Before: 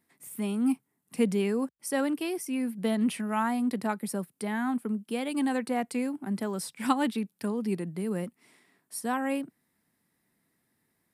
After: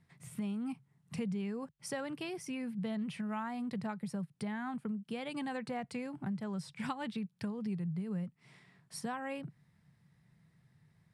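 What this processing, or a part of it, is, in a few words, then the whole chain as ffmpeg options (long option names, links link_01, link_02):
jukebox: -af "lowpass=5600,lowshelf=frequency=200:width_type=q:width=3:gain=10.5,acompressor=threshold=-39dB:ratio=4,volume=1.5dB"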